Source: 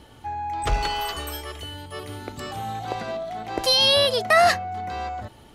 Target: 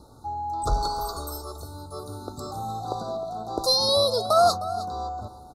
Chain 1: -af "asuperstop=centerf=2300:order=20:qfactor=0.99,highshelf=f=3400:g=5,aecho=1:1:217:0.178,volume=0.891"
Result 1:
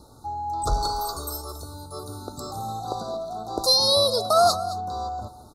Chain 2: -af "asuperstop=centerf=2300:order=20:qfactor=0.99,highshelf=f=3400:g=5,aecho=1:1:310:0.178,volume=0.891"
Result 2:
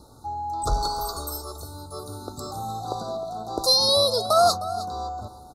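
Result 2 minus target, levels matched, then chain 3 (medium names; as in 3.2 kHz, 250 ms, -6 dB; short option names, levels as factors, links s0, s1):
8 kHz band +2.5 dB
-af "asuperstop=centerf=2300:order=20:qfactor=0.99,aecho=1:1:310:0.178,volume=0.891"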